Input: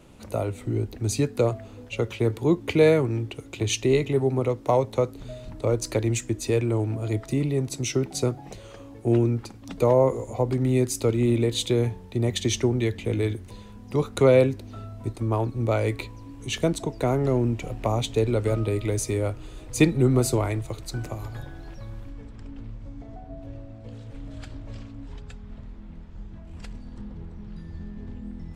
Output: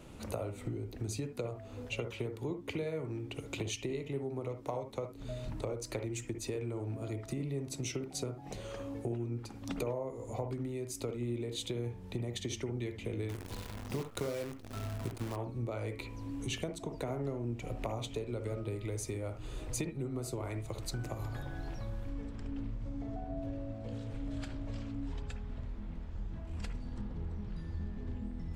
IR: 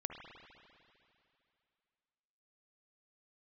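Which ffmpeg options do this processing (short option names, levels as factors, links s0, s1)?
-filter_complex "[0:a]acompressor=threshold=0.02:ratio=10,asettb=1/sr,asplit=3[s0][s1][s2];[s0]atrim=end=13.294[s3];[s1]atrim=start=13.29:end=15.36,asetpts=PTS-STARTPTS,afade=t=in:d=0.004:c=qsin,afade=t=out:st=2.066:d=0.004:c=qsin,acrusher=bits=8:dc=4:mix=0:aa=0.000001[s4];[s2]atrim=start=15.356[s5];[s3][s4]acrossfade=d=0.004:c1=hsin:c2=qsin[s6];[s6][s5]acrossfade=d=0.004:c1=qsin:c2=hsin[s7];[1:a]atrim=start_sample=2205,atrim=end_sample=3528[s8];[s7][s8]afir=irnorm=-1:irlink=0,volume=1.33"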